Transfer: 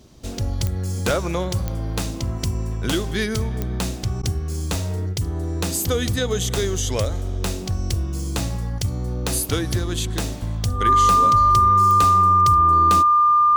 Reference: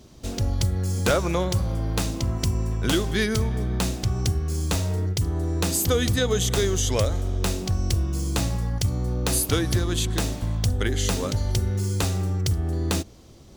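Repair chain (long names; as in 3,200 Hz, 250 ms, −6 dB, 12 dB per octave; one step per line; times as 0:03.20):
click removal
notch filter 1,200 Hz, Q 30
repair the gap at 0:04.22, 11 ms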